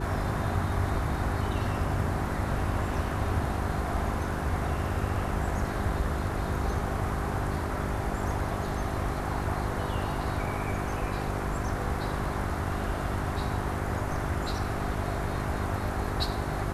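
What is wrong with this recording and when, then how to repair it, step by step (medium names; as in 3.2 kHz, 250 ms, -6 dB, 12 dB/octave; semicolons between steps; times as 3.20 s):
hum 50 Hz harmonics 8 -35 dBFS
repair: de-hum 50 Hz, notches 8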